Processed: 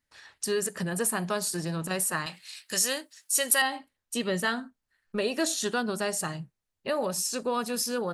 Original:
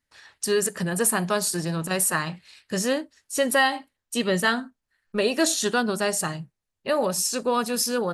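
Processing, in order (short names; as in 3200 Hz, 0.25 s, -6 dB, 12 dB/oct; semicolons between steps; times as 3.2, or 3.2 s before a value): 2.26–3.62 tilt +4 dB/oct; in parallel at +2 dB: compressor, threshold -30 dBFS, peak gain reduction 18 dB; on the sum: gain -8.5 dB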